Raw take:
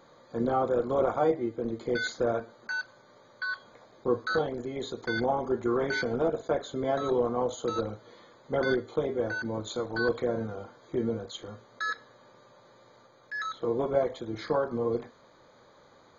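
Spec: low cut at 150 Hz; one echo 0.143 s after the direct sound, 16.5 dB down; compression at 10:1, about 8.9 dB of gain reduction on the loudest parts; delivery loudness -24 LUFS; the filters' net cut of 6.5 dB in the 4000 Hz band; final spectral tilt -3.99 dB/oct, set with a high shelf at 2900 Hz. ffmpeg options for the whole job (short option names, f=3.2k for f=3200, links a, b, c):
-af "highpass=150,highshelf=f=2.9k:g=-4.5,equalizer=f=4k:t=o:g=-4,acompressor=threshold=-30dB:ratio=10,aecho=1:1:143:0.15,volume=12.5dB"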